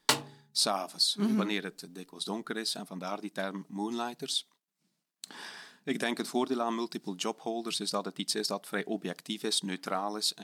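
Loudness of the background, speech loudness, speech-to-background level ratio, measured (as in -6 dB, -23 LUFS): -30.5 LUFS, -32.5 LUFS, -2.0 dB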